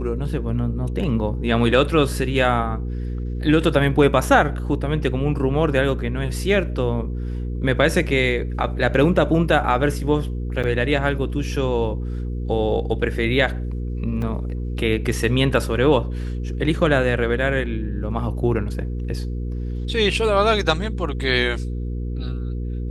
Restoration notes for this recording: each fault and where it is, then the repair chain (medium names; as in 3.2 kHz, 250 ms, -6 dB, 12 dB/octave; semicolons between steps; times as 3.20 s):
hum 60 Hz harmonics 8 -26 dBFS
10.63–10.64 s: dropout 6.8 ms
14.22 s: dropout 2.4 ms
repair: de-hum 60 Hz, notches 8; interpolate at 10.63 s, 6.8 ms; interpolate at 14.22 s, 2.4 ms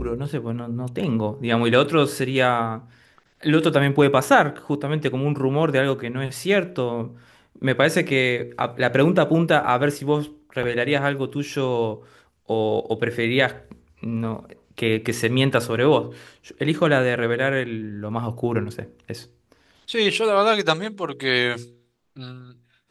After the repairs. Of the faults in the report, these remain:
nothing left